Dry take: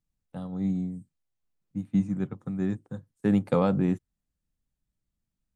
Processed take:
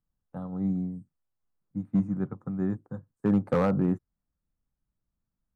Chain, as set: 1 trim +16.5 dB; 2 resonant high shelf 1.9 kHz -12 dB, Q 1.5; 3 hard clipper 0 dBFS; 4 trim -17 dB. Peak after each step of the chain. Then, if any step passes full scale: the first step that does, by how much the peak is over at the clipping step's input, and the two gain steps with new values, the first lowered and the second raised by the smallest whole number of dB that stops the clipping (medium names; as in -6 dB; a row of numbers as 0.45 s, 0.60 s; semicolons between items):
+5.5 dBFS, +6.5 dBFS, 0.0 dBFS, -17.0 dBFS; step 1, 6.5 dB; step 1 +9.5 dB, step 4 -10 dB